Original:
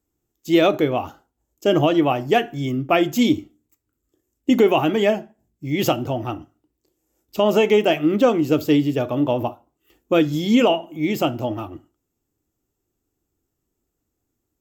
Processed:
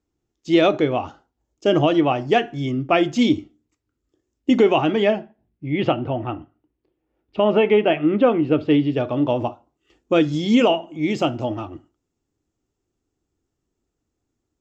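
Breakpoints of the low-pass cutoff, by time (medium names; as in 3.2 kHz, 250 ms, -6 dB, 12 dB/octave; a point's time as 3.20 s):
low-pass 24 dB/octave
4.75 s 6.1 kHz
5.65 s 3 kHz
8.60 s 3 kHz
9.45 s 6.9 kHz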